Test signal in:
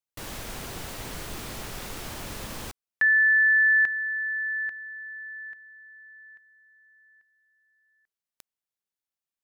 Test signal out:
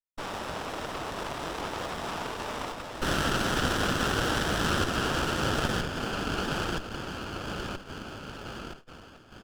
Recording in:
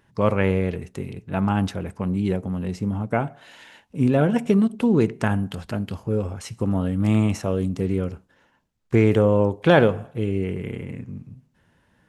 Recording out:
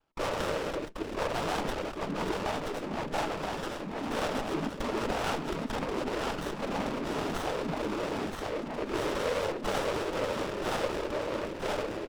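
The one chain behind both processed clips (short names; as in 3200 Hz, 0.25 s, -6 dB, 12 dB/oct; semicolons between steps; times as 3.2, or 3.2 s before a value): median filter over 5 samples; HPF 240 Hz 24 dB/oct; on a send: feedback echo 0.975 s, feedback 48%, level -6 dB; on the sum: overdrive pedal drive 26 dB, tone 3100 Hz, clips at -3 dBFS; high shelf 3400 Hz -7.5 dB; soft clip -21 dBFS; tilt shelf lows -6.5 dB; gate -38 dBFS, range -22 dB; noise vocoder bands 12; running maximum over 17 samples; gain -5 dB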